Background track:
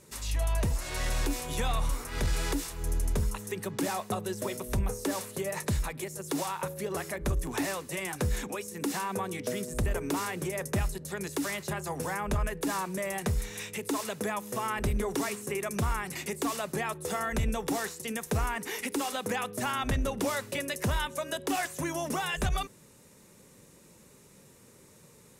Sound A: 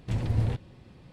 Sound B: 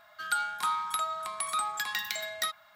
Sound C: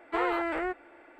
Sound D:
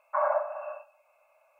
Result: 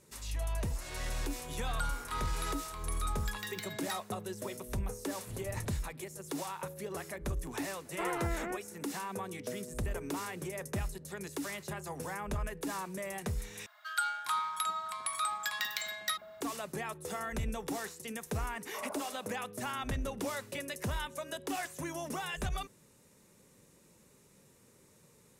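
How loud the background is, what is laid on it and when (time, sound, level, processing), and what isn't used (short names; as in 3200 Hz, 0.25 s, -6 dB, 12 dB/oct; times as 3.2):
background track -6.5 dB
1.48 add B -9.5 dB
5.19 add A -15.5 dB
7.85 add C -7.5 dB + decimation joined by straight lines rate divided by 2×
13.66 replace with B -2.5 dB + bands offset in time highs, lows 0.4 s, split 640 Hz
18.6 add D -16.5 dB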